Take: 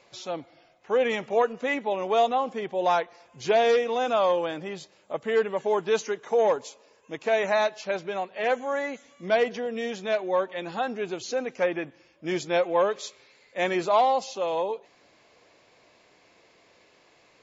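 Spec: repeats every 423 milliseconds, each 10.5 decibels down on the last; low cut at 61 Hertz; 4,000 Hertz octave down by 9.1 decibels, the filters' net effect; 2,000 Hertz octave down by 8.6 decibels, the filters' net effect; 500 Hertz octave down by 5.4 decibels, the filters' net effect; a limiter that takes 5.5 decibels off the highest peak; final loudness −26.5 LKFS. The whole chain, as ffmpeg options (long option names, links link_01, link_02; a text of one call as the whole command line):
ffmpeg -i in.wav -af "highpass=61,equalizer=frequency=500:width_type=o:gain=-6,equalizer=frequency=2000:width_type=o:gain=-8.5,equalizer=frequency=4000:width_type=o:gain=-8.5,alimiter=limit=-21.5dB:level=0:latency=1,aecho=1:1:423|846|1269:0.299|0.0896|0.0269,volume=6.5dB" out.wav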